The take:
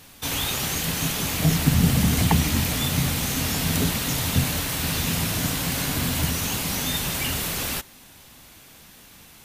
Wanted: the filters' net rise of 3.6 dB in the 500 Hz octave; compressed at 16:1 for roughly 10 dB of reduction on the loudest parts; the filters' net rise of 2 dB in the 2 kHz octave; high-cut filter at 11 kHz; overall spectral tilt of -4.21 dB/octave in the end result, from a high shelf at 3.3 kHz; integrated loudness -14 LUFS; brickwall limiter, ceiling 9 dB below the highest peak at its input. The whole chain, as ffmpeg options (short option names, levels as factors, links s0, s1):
-af "lowpass=11000,equalizer=f=500:t=o:g=4.5,equalizer=f=2000:t=o:g=5,highshelf=f=3300:g=-8,acompressor=threshold=0.0708:ratio=16,volume=7.5,alimiter=limit=0.531:level=0:latency=1"